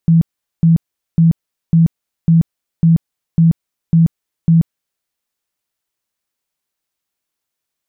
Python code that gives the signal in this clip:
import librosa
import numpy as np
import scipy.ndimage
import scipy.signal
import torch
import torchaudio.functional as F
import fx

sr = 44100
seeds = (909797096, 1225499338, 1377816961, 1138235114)

y = fx.tone_burst(sr, hz=165.0, cycles=22, every_s=0.55, bursts=9, level_db=-6.0)